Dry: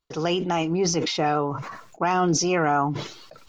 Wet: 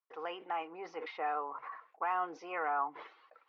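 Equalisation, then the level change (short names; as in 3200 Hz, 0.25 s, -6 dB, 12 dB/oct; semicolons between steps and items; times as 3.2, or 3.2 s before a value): speaker cabinet 290–2100 Hz, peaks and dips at 300 Hz +4 dB, 480 Hz +10 dB, 790 Hz +9 dB, 1100 Hz +9 dB, 1900 Hz +4 dB; differentiator; 0.0 dB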